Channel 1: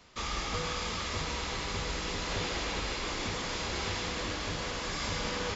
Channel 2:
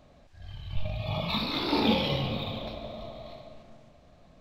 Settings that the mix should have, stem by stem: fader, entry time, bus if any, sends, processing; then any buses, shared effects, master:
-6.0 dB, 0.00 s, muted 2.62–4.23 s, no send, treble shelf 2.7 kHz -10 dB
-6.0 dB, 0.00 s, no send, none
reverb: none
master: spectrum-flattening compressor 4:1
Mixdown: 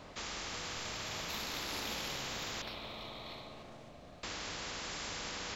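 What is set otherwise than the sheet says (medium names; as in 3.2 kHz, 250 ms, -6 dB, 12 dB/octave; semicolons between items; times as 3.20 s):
stem 1 -6.0 dB -> -15.5 dB; stem 2 -6.0 dB -> -15.5 dB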